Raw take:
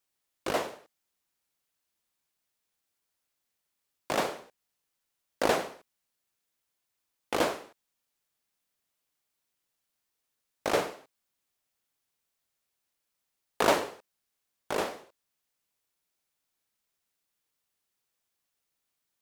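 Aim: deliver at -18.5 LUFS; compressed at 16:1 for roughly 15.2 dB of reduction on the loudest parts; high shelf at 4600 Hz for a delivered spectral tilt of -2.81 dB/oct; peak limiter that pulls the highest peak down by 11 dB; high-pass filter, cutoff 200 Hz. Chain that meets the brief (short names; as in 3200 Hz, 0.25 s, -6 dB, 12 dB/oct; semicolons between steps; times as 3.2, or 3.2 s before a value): HPF 200 Hz; high shelf 4600 Hz -5.5 dB; compressor 16:1, threshold -35 dBFS; gain +27.5 dB; limiter -1 dBFS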